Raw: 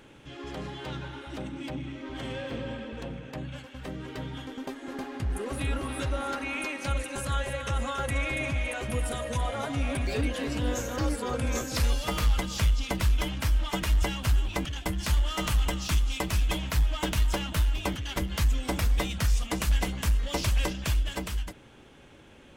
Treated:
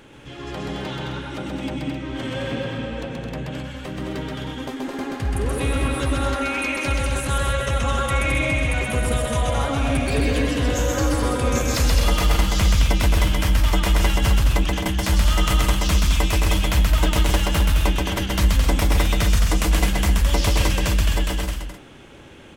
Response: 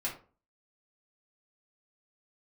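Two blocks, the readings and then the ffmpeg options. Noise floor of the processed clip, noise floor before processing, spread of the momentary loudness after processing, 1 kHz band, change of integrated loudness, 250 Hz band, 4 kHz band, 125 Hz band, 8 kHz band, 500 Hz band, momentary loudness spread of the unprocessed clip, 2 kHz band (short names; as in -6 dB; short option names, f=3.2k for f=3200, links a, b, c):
-38 dBFS, -52 dBFS, 11 LU, +8.5 dB, +8.5 dB, +9.0 dB, +8.5 dB, +8.5 dB, +8.5 dB, +8.5 dB, 11 LU, +8.5 dB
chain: -af "aecho=1:1:128.3|215.7|262.4:0.794|0.562|0.355,volume=5.5dB"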